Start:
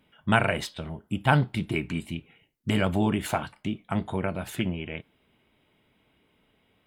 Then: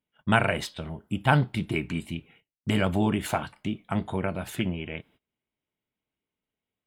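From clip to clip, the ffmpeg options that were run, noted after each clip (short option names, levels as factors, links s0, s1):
-af "agate=range=0.0708:threshold=0.00158:ratio=16:detection=peak"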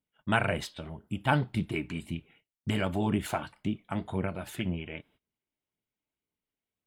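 -af "flanger=delay=0.1:depth=3.4:regen=63:speed=1.9:shape=sinusoidal"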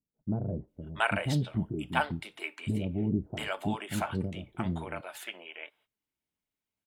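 -filter_complex "[0:a]acrossover=split=490[s0][s1];[s1]adelay=680[s2];[s0][s2]amix=inputs=2:normalize=0"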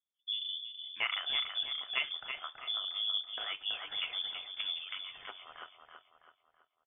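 -filter_complex "[0:a]lowpass=f=3100:t=q:w=0.5098,lowpass=f=3100:t=q:w=0.6013,lowpass=f=3100:t=q:w=0.9,lowpass=f=3100:t=q:w=2.563,afreqshift=-3600,asplit=2[s0][s1];[s1]adelay=328,lowpass=f=2800:p=1,volume=0.562,asplit=2[s2][s3];[s3]adelay=328,lowpass=f=2800:p=1,volume=0.47,asplit=2[s4][s5];[s5]adelay=328,lowpass=f=2800:p=1,volume=0.47,asplit=2[s6][s7];[s7]adelay=328,lowpass=f=2800:p=1,volume=0.47,asplit=2[s8][s9];[s9]adelay=328,lowpass=f=2800:p=1,volume=0.47,asplit=2[s10][s11];[s11]adelay=328,lowpass=f=2800:p=1,volume=0.47[s12];[s0][s2][s4][s6][s8][s10][s12]amix=inputs=7:normalize=0,volume=0.501"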